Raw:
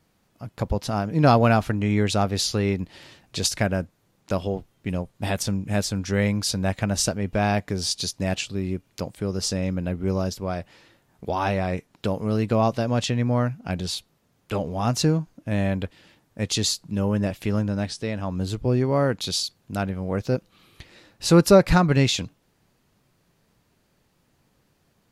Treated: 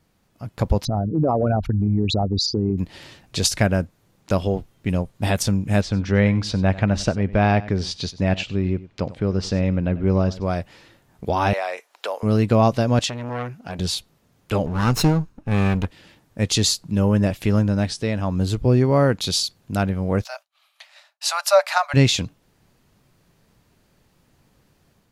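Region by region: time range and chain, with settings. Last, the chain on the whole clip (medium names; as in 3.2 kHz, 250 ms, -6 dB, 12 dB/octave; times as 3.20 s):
0.85–2.78 s: resonances exaggerated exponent 3 + compression 3:1, threshold -22 dBFS
5.81–10.46 s: low-pass 3.4 kHz + delay 95 ms -17.5 dB
11.53–12.23 s: high-pass 570 Hz 24 dB/octave + three bands compressed up and down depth 40%
12.99–13.79 s: bass shelf 210 Hz -11.5 dB + transformer saturation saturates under 1.3 kHz
14.66–15.85 s: comb filter that takes the minimum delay 0.74 ms + treble shelf 11 kHz -3 dB + tape noise reduction on one side only decoder only
20.24–21.94 s: Chebyshev high-pass 580 Hz, order 10 + expander -52 dBFS
whole clip: bass shelf 110 Hz +4.5 dB; level rider gain up to 4 dB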